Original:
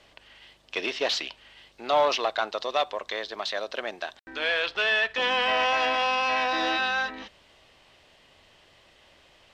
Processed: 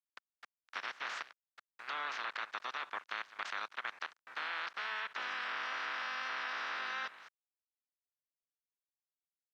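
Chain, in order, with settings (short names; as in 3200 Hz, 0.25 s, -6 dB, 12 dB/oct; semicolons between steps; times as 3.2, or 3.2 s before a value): spectral limiter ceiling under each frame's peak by 26 dB; gate -53 dBFS, range -7 dB; level quantiser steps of 17 dB; bit-crush 9-bit; band-pass 1400 Hz, Q 2; three-band squash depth 40%; gain +1 dB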